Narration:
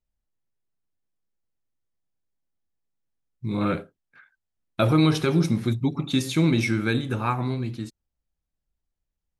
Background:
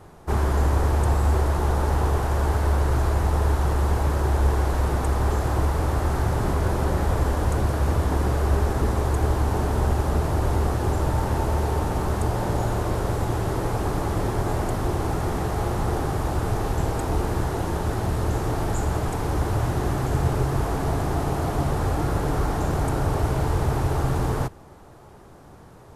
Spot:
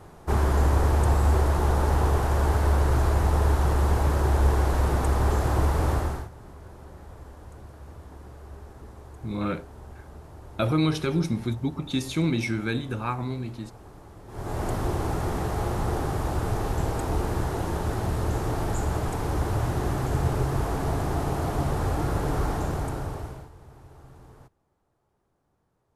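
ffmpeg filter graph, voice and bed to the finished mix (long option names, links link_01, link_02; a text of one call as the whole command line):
ffmpeg -i stem1.wav -i stem2.wav -filter_complex "[0:a]adelay=5800,volume=-4dB[link_01];[1:a]volume=19dB,afade=type=out:start_time=5.92:duration=0.37:silence=0.0841395,afade=type=in:start_time=14.27:duration=0.42:silence=0.105925,afade=type=out:start_time=22.49:duration=1.01:silence=0.0668344[link_02];[link_01][link_02]amix=inputs=2:normalize=0" out.wav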